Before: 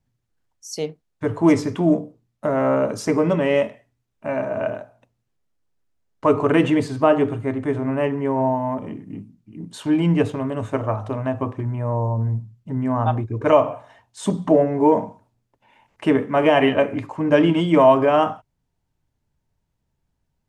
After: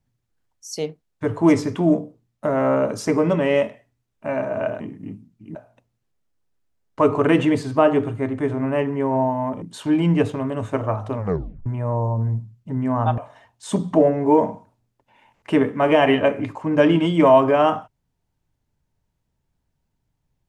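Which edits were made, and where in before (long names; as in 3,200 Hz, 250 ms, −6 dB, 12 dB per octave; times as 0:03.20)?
0:08.87–0:09.62: move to 0:04.80
0:11.16: tape stop 0.50 s
0:13.18–0:13.72: remove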